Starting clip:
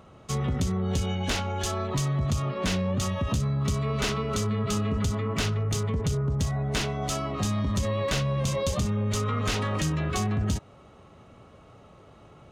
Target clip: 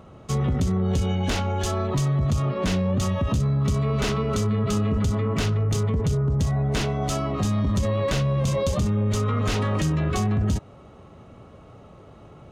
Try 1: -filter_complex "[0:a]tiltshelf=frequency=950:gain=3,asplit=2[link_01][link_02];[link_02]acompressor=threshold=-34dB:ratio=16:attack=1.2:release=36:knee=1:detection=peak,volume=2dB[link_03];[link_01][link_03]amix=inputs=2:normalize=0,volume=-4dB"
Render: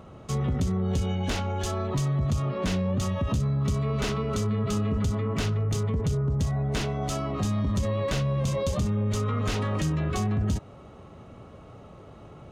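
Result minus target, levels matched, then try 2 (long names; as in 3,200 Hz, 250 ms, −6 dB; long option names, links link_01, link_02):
downward compressor: peak gain reduction +10.5 dB
-filter_complex "[0:a]tiltshelf=frequency=950:gain=3,asplit=2[link_01][link_02];[link_02]acompressor=threshold=-23dB:ratio=16:attack=1.2:release=36:knee=1:detection=peak,volume=2dB[link_03];[link_01][link_03]amix=inputs=2:normalize=0,volume=-4dB"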